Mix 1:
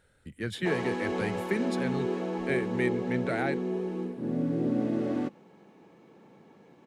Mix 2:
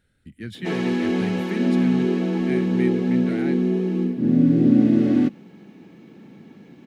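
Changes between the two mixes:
background +11.0 dB
master: add octave-band graphic EQ 250/500/1,000/8,000 Hz +5/−8/−10/−6 dB

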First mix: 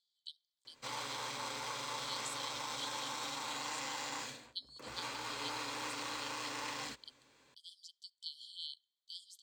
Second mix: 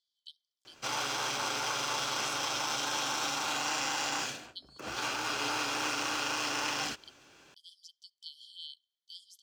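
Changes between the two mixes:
background +8.5 dB
master: remove EQ curve with evenly spaced ripples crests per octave 1, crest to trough 8 dB

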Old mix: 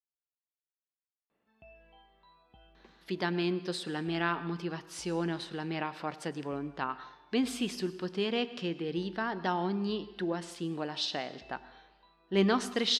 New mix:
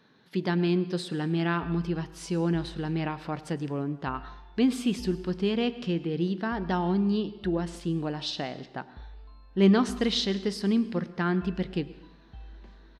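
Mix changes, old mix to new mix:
speech: entry −2.75 s
master: remove high-pass filter 470 Hz 6 dB per octave

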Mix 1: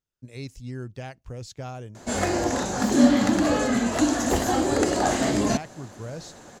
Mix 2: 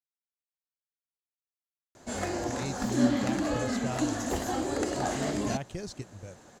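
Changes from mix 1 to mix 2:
speech: entry +2.25 s
background −8.0 dB

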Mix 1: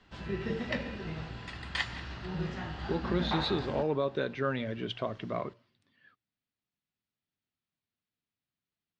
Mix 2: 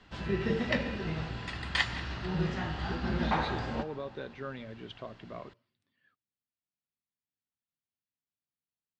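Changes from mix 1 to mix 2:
speech −9.0 dB
background +4.0 dB

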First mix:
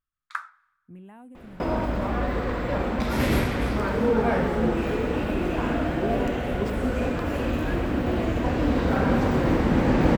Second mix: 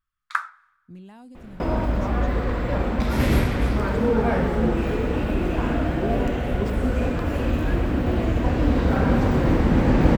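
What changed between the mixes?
speech: remove Butterworth band-reject 5,000 Hz, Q 0.77
first sound +7.0 dB
master: add low-shelf EQ 130 Hz +7.5 dB

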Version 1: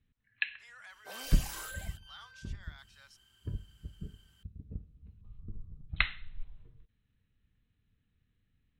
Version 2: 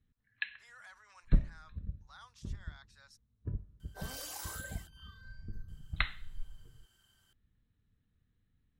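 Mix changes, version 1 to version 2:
second sound: entry +2.90 s
master: add parametric band 2,600 Hz −8 dB 0.75 octaves

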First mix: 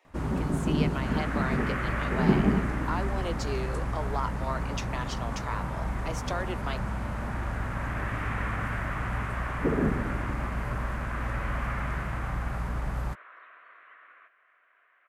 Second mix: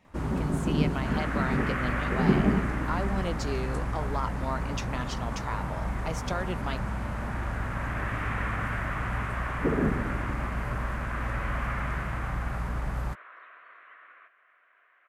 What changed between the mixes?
speech: remove Butterworth high-pass 300 Hz 72 dB per octave
second sound: send on

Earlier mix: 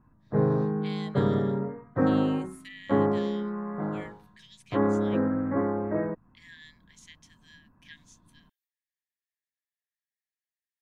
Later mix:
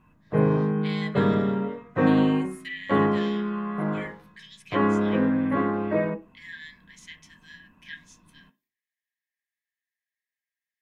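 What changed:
background: remove Butterworth low-pass 1,800 Hz 36 dB per octave
reverb: on, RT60 0.40 s

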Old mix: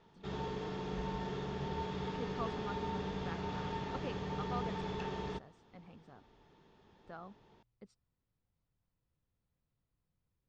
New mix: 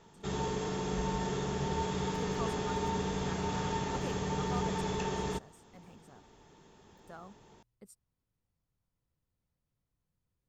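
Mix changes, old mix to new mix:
background +5.5 dB
master: remove low-pass filter 4,700 Hz 24 dB per octave

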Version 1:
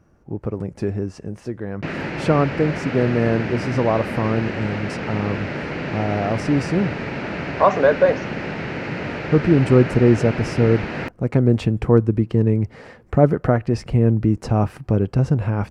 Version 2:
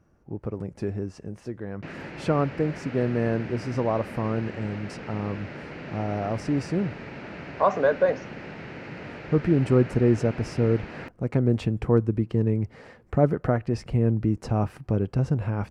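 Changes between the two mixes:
speech −6.0 dB
background −11.5 dB

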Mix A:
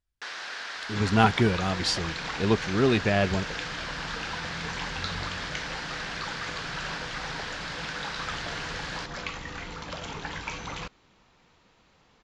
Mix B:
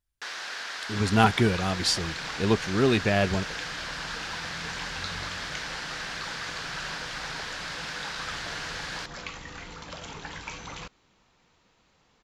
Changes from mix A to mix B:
second sound −4.0 dB
master: remove high-frequency loss of the air 56 metres

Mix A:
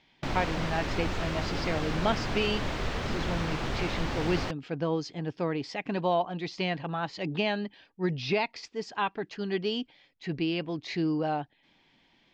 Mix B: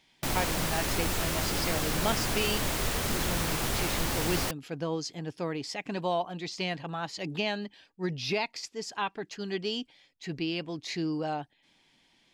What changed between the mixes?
speech −3.5 dB
master: remove high-frequency loss of the air 180 metres

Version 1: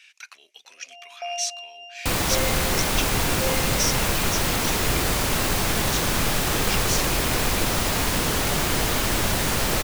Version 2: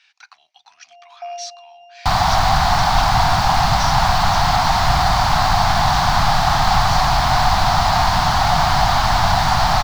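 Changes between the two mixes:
first sound −5.0 dB
second sound +7.5 dB
master: add drawn EQ curve 150 Hz 0 dB, 480 Hz −26 dB, 730 Hz +11 dB, 2,600 Hz −8 dB, 4,500 Hz +1 dB, 9,100 Hz −19 dB

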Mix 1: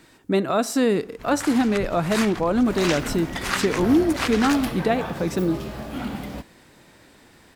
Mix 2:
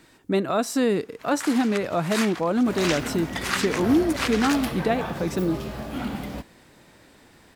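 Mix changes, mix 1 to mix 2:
speech: send −11.5 dB
first sound: add high-pass filter 770 Hz 6 dB per octave

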